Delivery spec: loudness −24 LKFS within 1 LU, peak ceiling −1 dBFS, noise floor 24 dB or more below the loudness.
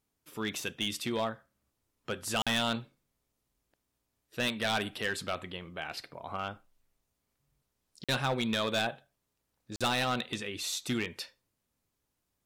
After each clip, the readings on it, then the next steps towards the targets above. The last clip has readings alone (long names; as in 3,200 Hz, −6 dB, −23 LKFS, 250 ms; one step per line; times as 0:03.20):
share of clipped samples 0.6%; peaks flattened at −24.0 dBFS; number of dropouts 3; longest dropout 46 ms; integrated loudness −33.0 LKFS; sample peak −24.0 dBFS; target loudness −24.0 LKFS
→ clipped peaks rebuilt −24 dBFS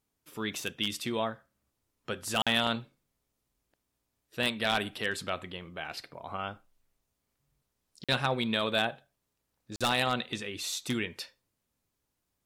share of clipped samples 0.0%; number of dropouts 3; longest dropout 46 ms
→ repair the gap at 0:02.42/0:08.04/0:09.76, 46 ms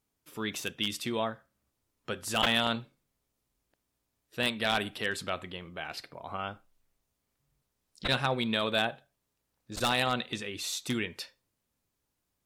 number of dropouts 0; integrated loudness −31.5 LKFS; sample peak −14.0 dBFS; target loudness −24.0 LKFS
→ level +7.5 dB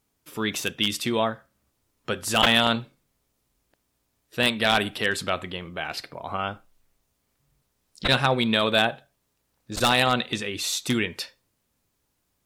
integrated loudness −24.0 LKFS; sample peak −6.5 dBFS; background noise floor −74 dBFS